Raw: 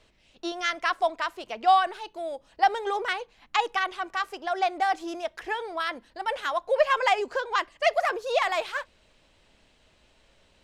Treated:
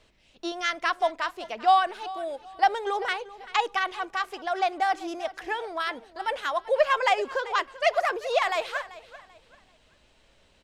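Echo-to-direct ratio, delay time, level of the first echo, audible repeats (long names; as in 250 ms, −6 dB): −17.0 dB, 388 ms, −17.5 dB, 2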